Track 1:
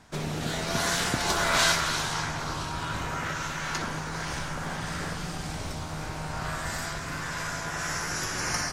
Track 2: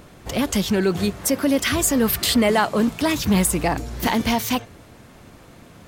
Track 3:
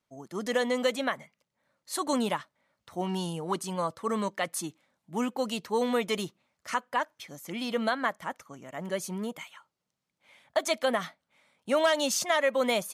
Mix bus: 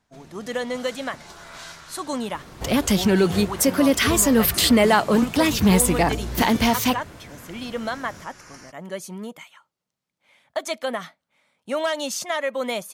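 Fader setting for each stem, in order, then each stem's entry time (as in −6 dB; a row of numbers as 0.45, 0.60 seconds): −17.0, +1.5, 0.0 decibels; 0.00, 2.35, 0.00 seconds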